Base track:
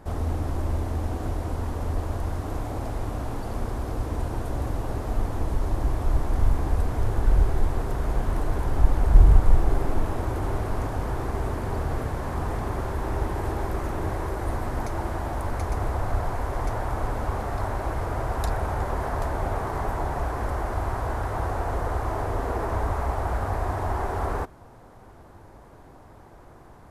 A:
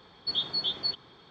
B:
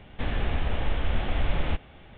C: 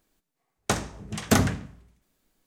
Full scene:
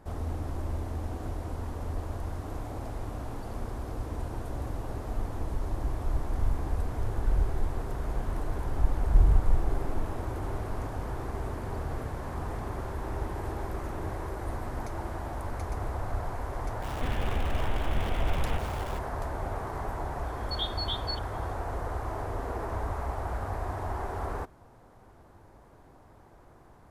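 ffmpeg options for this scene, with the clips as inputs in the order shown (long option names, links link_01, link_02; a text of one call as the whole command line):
ffmpeg -i bed.wav -i cue0.wav -i cue1.wav -filter_complex "[0:a]volume=-6.5dB[link_01];[2:a]aeval=exprs='val(0)+0.5*0.0237*sgn(val(0))':channel_layout=same[link_02];[1:a]lowpass=4300[link_03];[link_02]atrim=end=2.17,asetpts=PTS-STARTPTS,volume=-5dB,afade=type=in:duration=0.004:curve=hsin,afade=type=out:start_time=2.166:duration=0.004:curve=hsin,adelay=16820[link_04];[link_03]atrim=end=1.3,asetpts=PTS-STARTPTS,volume=-3dB,afade=type=in:duration=0.004:curve=hsin,afade=type=out:start_time=1.296:duration=0.004:curve=hsin,adelay=20240[link_05];[link_01][link_04][link_05]amix=inputs=3:normalize=0" out.wav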